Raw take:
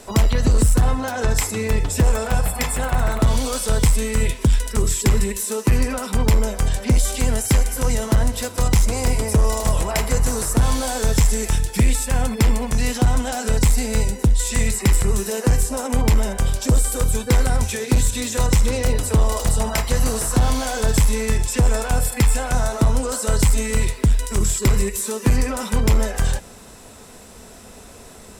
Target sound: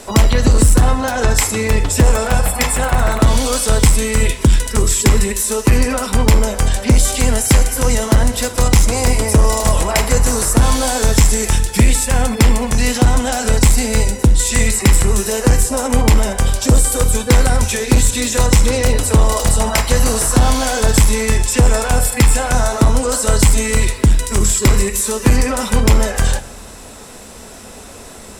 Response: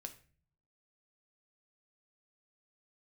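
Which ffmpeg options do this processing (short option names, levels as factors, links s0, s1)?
-filter_complex "[0:a]asplit=2[s0][s1];[1:a]atrim=start_sample=2205,asetrate=22932,aresample=44100,lowshelf=f=180:g=-11.5[s2];[s1][s2]afir=irnorm=-1:irlink=0,volume=0.708[s3];[s0][s3]amix=inputs=2:normalize=0,volume=1.5"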